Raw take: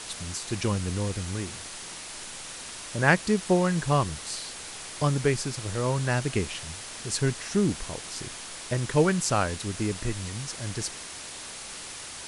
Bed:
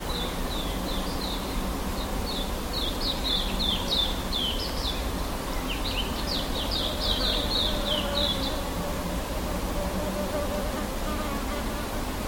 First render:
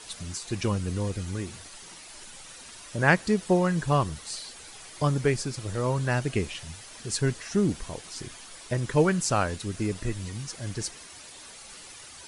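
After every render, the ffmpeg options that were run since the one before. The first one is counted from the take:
ffmpeg -i in.wav -af "afftdn=noise_reduction=9:noise_floor=-40" out.wav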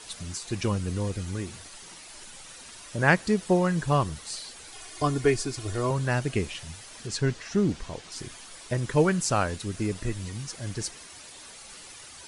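ffmpeg -i in.wav -filter_complex "[0:a]asettb=1/sr,asplit=3[link_01][link_02][link_03];[link_01]atrim=end=4.724[link_04];[link_02]atrim=start=4.72:end=5.91,asetpts=PTS-STARTPTS,afade=type=in:duration=0.004:curve=qsin,afade=type=out:start_time=1.186:duration=0.004:curve=qsin,aecho=1:1:2.8:0.67,atrim=end_sample=52479[link_05];[link_03]atrim=start=5.906[link_06];[link_04][link_05]acrossfade=duration=0.004:curve1=hsin:curve2=qsin[link_07];[link_07][link_06]acrossfade=duration=0.004:curve1=qsin:curve2=hsin,asettb=1/sr,asplit=3[link_08][link_09][link_10];[link_08]atrim=end=7.074[link_11];[link_09]atrim=start=7.07:end=8.12,asetpts=PTS-STARTPTS,afade=type=in:duration=0.004:curve=qsin,afade=type=out:start_time=1.046:duration=0.004:curve=qsin,lowpass=6500[link_12];[link_10]atrim=start=8.116[link_13];[link_11][link_12]acrossfade=duration=0.004:curve1=hsin:curve2=qsin[link_14];[link_14][link_13]acrossfade=duration=0.004:curve1=qsin:curve2=hsin" out.wav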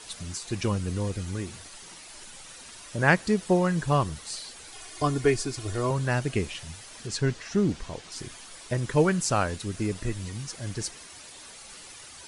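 ffmpeg -i in.wav -af anull out.wav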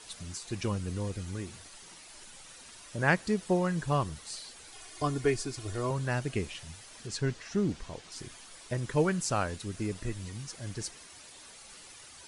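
ffmpeg -i in.wav -af "volume=-5dB" out.wav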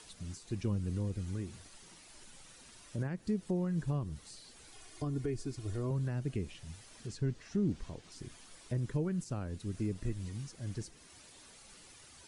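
ffmpeg -i in.wav -filter_complex "[0:a]alimiter=limit=-21.5dB:level=0:latency=1:release=153,acrossover=split=380[link_01][link_02];[link_02]acompressor=threshold=-59dB:ratio=2[link_03];[link_01][link_03]amix=inputs=2:normalize=0" out.wav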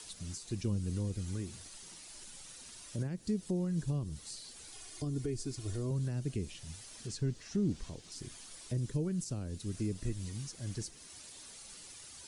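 ffmpeg -i in.wav -filter_complex "[0:a]acrossover=split=560|3600[link_01][link_02][link_03];[link_02]alimiter=level_in=23.5dB:limit=-24dB:level=0:latency=1:release=298,volume=-23.5dB[link_04];[link_03]acontrast=88[link_05];[link_01][link_04][link_05]amix=inputs=3:normalize=0" out.wav

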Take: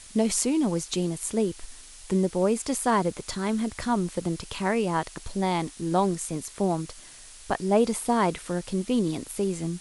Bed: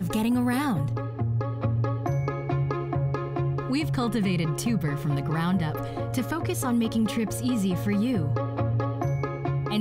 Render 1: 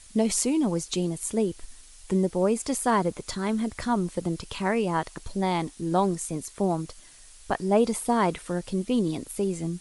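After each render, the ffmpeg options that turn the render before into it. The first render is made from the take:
ffmpeg -i in.wav -af "afftdn=noise_reduction=6:noise_floor=-47" out.wav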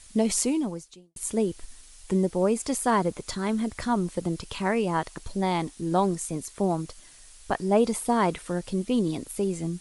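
ffmpeg -i in.wav -filter_complex "[0:a]asplit=2[link_01][link_02];[link_01]atrim=end=1.16,asetpts=PTS-STARTPTS,afade=type=out:start_time=0.5:duration=0.66:curve=qua[link_03];[link_02]atrim=start=1.16,asetpts=PTS-STARTPTS,afade=type=in:duration=0.004:curve=hsin[link_04];[link_03][link_04]concat=n=2:v=0:a=1" out.wav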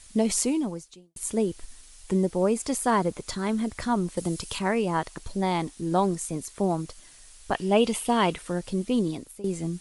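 ffmpeg -i in.wav -filter_complex "[0:a]asettb=1/sr,asplit=3[link_01][link_02][link_03];[link_01]atrim=end=4.174[link_04];[link_02]atrim=start=4.17:end=4.59,asetpts=PTS-STARTPTS,afade=type=in:duration=0.004:curve=qsin,afade=type=out:start_time=0.416:duration=0.004:curve=qsin,highshelf=frequency=5200:gain=11.5[link_05];[link_03]atrim=start=4.586[link_06];[link_04][link_05]acrossfade=duration=0.004:curve1=hsin:curve2=qsin[link_07];[link_07][link_06]acrossfade=duration=0.004:curve1=qsin:curve2=hsin,asettb=1/sr,asplit=3[link_08][link_09][link_10];[link_08]atrim=end=7.544[link_11];[link_09]atrim=start=7.54:end=8.33,asetpts=PTS-STARTPTS,afade=type=in:duration=0.004:curve=qsin,afade=type=out:start_time=0.786:duration=0.004:curve=qsin,equalizer=frequency=2900:width=3.1:gain=15[link_12];[link_10]atrim=start=8.326[link_13];[link_11][link_12]acrossfade=duration=0.004:curve1=hsin:curve2=qsin[link_14];[link_14][link_13]acrossfade=duration=0.004:curve1=qsin:curve2=hsin,asplit=2[link_15][link_16];[link_15]atrim=end=9.44,asetpts=PTS-STARTPTS,afade=type=out:start_time=9.02:duration=0.42:silence=0.141254[link_17];[link_16]atrim=start=9.44,asetpts=PTS-STARTPTS,afade=type=in:duration=0.004:curve=hsin:silence=0.141254[link_18];[link_17][link_18]concat=n=2:v=0:a=1" out.wav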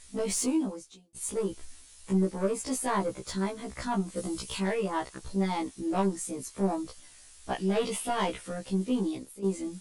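ffmpeg -i in.wav -af "asoftclip=type=tanh:threshold=-19.5dB,afftfilt=real='re*1.73*eq(mod(b,3),0)':imag='im*1.73*eq(mod(b,3),0)':win_size=2048:overlap=0.75" out.wav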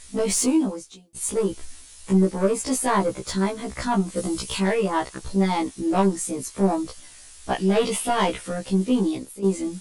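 ffmpeg -i in.wav -af "volume=7.5dB" out.wav

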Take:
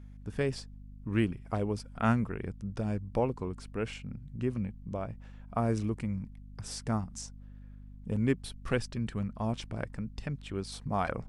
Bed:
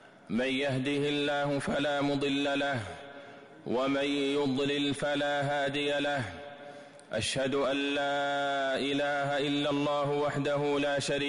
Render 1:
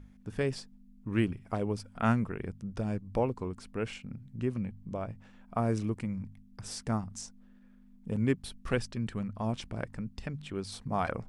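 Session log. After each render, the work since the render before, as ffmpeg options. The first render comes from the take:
ffmpeg -i in.wav -af "bandreject=frequency=50:width_type=h:width=4,bandreject=frequency=100:width_type=h:width=4,bandreject=frequency=150:width_type=h:width=4" out.wav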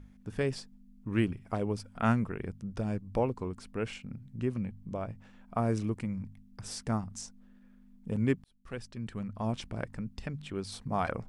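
ffmpeg -i in.wav -filter_complex "[0:a]asplit=2[link_01][link_02];[link_01]atrim=end=8.44,asetpts=PTS-STARTPTS,afade=type=out:start_time=8.436:duration=0.004:curve=hsin[link_03];[link_02]atrim=start=8.44,asetpts=PTS-STARTPTS,afade=type=in:duration=1.01[link_04];[link_03][link_04]concat=n=2:v=0:a=1" out.wav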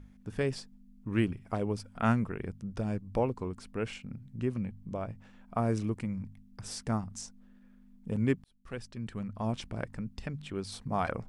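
ffmpeg -i in.wav -af anull out.wav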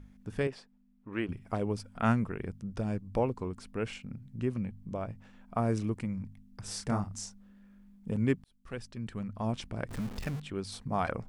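ffmpeg -i in.wav -filter_complex "[0:a]asettb=1/sr,asplit=3[link_01][link_02][link_03];[link_01]atrim=end=0.474[link_04];[link_02]atrim=start=0.47:end=1.29,asetpts=PTS-STARTPTS,afade=type=in:duration=0.004:curve=qsin,afade=type=out:start_time=0.816:duration=0.004:curve=qsin,bass=frequency=250:gain=-14,treble=frequency=4000:gain=-14[link_05];[link_03]atrim=start=1.286[link_06];[link_04][link_05]acrossfade=duration=0.004:curve1=hsin:curve2=qsin[link_07];[link_07][link_06]acrossfade=duration=0.004:curve1=qsin:curve2=hsin,asettb=1/sr,asplit=3[link_08][link_09][link_10];[link_08]atrim=end=6.654[link_11];[link_09]atrim=start=6.65:end=8.11,asetpts=PTS-STARTPTS,afade=type=in:duration=0.004:curve=qsin,afade=type=out:start_time=1.456:duration=0.004:curve=qsin,asplit=2[link_12][link_13];[link_13]adelay=30,volume=-3.5dB[link_14];[link_12][link_14]amix=inputs=2:normalize=0,atrim=end_sample=64386[link_15];[link_10]atrim=start=8.106[link_16];[link_11][link_15]acrossfade=duration=0.004:curve1=hsin:curve2=qsin[link_17];[link_17][link_16]acrossfade=duration=0.004:curve1=qsin:curve2=hsin,asettb=1/sr,asplit=3[link_18][link_19][link_20];[link_18]atrim=end=9.894[link_21];[link_19]atrim=start=9.89:end=10.4,asetpts=PTS-STARTPTS,afade=type=in:duration=0.004:curve=qsin,afade=type=out:start_time=0.506:duration=0.004:curve=qsin,aeval=exprs='val(0)+0.5*0.0133*sgn(val(0))':channel_layout=same[link_22];[link_20]atrim=start=10.396[link_23];[link_21][link_22]acrossfade=duration=0.004:curve1=hsin:curve2=qsin[link_24];[link_24][link_23]acrossfade=duration=0.004:curve1=qsin:curve2=hsin" out.wav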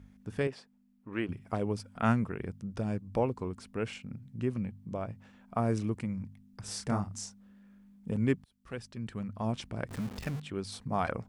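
ffmpeg -i in.wav -af "highpass=51" out.wav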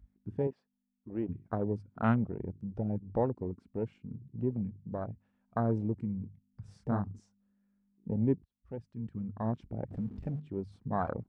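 ffmpeg -i in.wav -af "lowpass=frequency=1500:poles=1,afwtdn=0.0141" out.wav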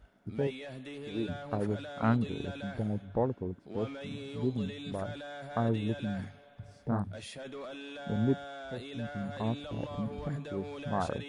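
ffmpeg -i in.wav -i bed.wav -filter_complex "[1:a]volume=-13.5dB[link_01];[0:a][link_01]amix=inputs=2:normalize=0" out.wav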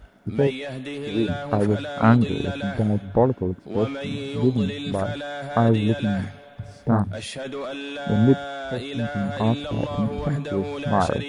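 ffmpeg -i in.wav -af "volume=11.5dB" out.wav

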